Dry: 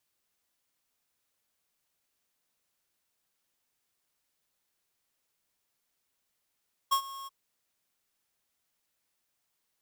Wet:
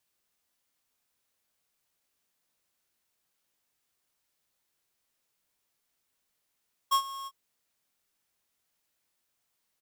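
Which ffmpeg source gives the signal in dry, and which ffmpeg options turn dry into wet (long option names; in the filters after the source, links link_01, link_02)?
-f lavfi -i "aevalsrc='0.0668*(2*lt(mod(1090*t,1),0.5)-1)':duration=0.383:sample_rate=44100,afade=type=in:duration=0.016,afade=type=out:start_time=0.016:duration=0.085:silence=0.119,afade=type=out:start_time=0.36:duration=0.023"
-filter_complex "[0:a]asplit=2[link_01][link_02];[link_02]adelay=22,volume=-8dB[link_03];[link_01][link_03]amix=inputs=2:normalize=0"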